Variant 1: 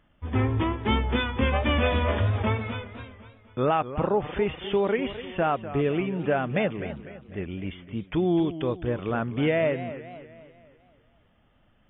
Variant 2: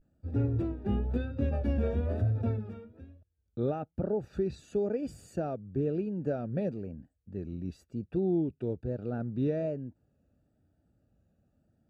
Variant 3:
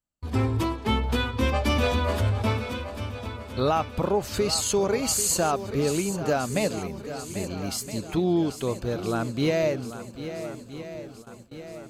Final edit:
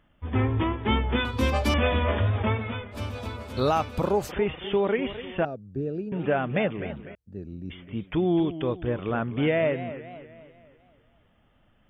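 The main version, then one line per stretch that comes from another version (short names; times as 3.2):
1
1.25–1.74 from 3
2.94–4.29 from 3, crossfade 0.06 s
5.45–6.12 from 2
7.15–7.7 from 2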